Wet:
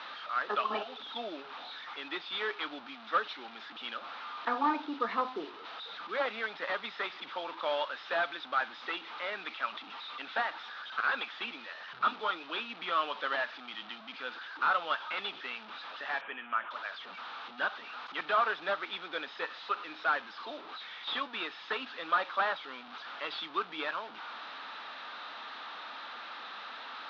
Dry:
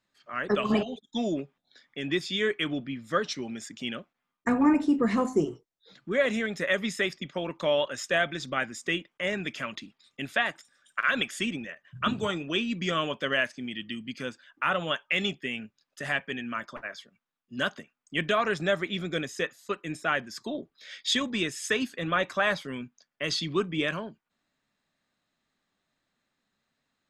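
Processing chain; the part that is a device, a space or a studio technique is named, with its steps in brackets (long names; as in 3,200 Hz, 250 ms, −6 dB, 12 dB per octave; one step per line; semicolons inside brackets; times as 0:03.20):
digital answering machine (band-pass filter 360–3,200 Hz; linear delta modulator 32 kbit/s, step −37 dBFS; loudspeaker in its box 380–3,900 Hz, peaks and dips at 380 Hz −7 dB, 570 Hz −5 dB, 880 Hz +5 dB, 1,300 Hz +8 dB, 2,000 Hz −4 dB, 3,700 Hz +6 dB)
0:16.21–0:16.71: Butterworth low-pass 3,200 Hz 72 dB per octave
level −2.5 dB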